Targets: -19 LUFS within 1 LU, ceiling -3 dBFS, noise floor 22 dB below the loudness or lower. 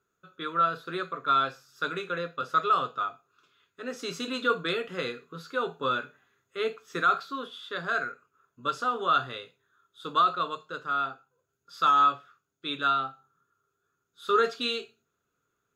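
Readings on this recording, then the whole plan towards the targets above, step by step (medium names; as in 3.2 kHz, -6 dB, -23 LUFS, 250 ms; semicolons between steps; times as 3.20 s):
loudness -28.5 LUFS; peak level -13.5 dBFS; loudness target -19.0 LUFS
-> trim +9.5 dB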